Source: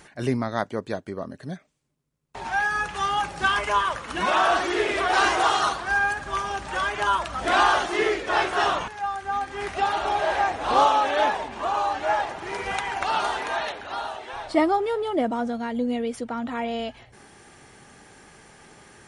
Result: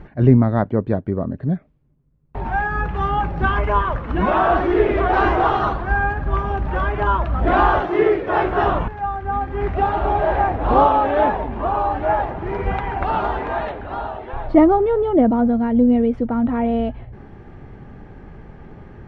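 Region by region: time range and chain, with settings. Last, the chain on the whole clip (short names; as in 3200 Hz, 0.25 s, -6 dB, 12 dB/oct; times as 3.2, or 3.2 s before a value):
7.8–8.45 HPF 120 Hz + bell 230 Hz -9.5 dB 0.3 oct
whole clip: LPF 2800 Hz 12 dB/oct; tilt -4.5 dB/oct; gain +3 dB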